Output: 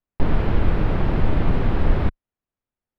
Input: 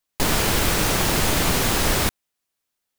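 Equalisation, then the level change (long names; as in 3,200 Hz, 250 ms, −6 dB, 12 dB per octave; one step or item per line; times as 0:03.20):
high-frequency loss of the air 410 metres
spectral tilt −2.5 dB per octave
−4.0 dB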